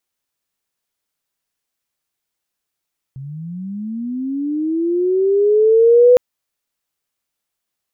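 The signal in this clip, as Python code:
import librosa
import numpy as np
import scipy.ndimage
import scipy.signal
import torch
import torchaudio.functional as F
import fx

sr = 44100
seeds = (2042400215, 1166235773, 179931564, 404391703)

y = fx.chirp(sr, length_s=3.01, from_hz=130.0, to_hz=500.0, law='linear', from_db=-28.0, to_db=-5.0)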